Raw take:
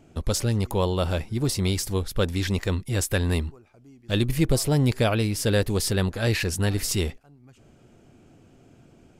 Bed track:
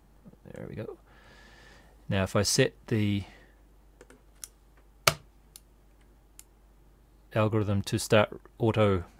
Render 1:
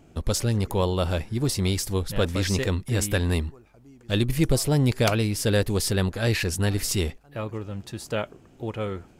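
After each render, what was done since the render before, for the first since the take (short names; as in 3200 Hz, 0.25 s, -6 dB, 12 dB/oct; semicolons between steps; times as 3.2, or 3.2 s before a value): add bed track -6 dB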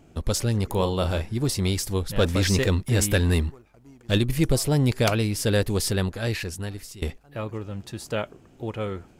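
0.67–1.34 doubler 37 ms -8.5 dB; 2.18–4.18 sample leveller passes 1; 5.87–7.02 fade out, to -21.5 dB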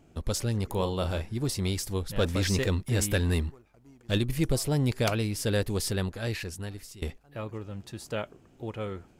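gain -5 dB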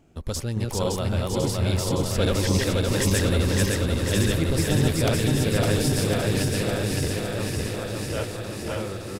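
regenerating reverse delay 0.282 s, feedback 81%, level -0.5 dB; feedback echo 1.057 s, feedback 37%, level -6.5 dB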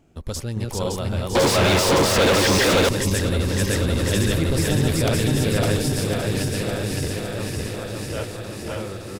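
1.35–2.89 overdrive pedal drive 36 dB, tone 3300 Hz, clips at -9.5 dBFS; 3.69–5.77 fast leveller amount 50%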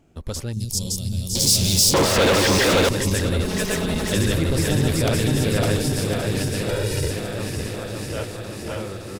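0.53–1.94 EQ curve 200 Hz 0 dB, 330 Hz -11 dB, 1400 Hz -28 dB, 5100 Hz +9 dB; 3.44–4.13 minimum comb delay 4.7 ms; 6.69–7.11 comb 2.1 ms, depth 70%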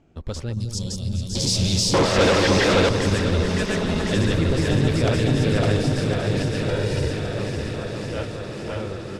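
air absorption 93 m; on a send: echo with dull and thin repeats by turns 0.21 s, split 1200 Hz, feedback 81%, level -10 dB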